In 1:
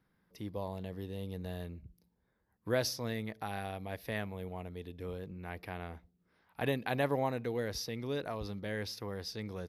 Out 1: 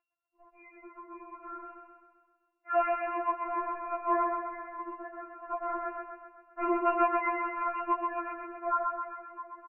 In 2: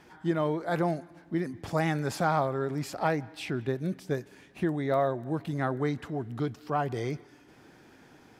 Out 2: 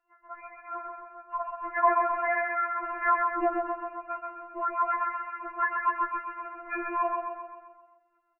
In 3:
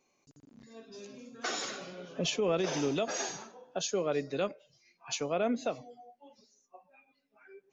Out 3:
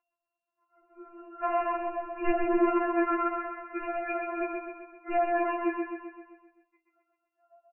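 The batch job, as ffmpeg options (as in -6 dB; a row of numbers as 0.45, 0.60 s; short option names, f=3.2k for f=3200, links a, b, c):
-filter_complex "[0:a]agate=range=-16dB:threshold=-52dB:ratio=16:detection=peak,dynaudnorm=f=130:g=17:m=15dB,aeval=exprs='val(0)+0.01*(sin(2*PI*50*n/s)+sin(2*PI*2*50*n/s)/2+sin(2*PI*3*50*n/s)/3+sin(2*PI*4*50*n/s)/4+sin(2*PI*5*50*n/s)/5)':c=same,crystalizer=i=6.5:c=0,highpass=f=2.1k:t=q:w=3.3,asoftclip=type=tanh:threshold=-3.5dB,asplit=2[a][b];[b]aecho=0:1:130|260|390|520|650|780|910:0.631|0.347|0.191|0.105|0.0577|0.0318|0.0175[c];[a][c]amix=inputs=2:normalize=0,lowpass=f=2.6k:t=q:w=0.5098,lowpass=f=2.6k:t=q:w=0.6013,lowpass=f=2.6k:t=q:w=0.9,lowpass=f=2.6k:t=q:w=2.563,afreqshift=-3000,afftfilt=real='re*4*eq(mod(b,16),0)':imag='im*4*eq(mod(b,16),0)':win_size=2048:overlap=0.75,volume=-7dB"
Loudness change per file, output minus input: +6.0, +1.5, +4.0 LU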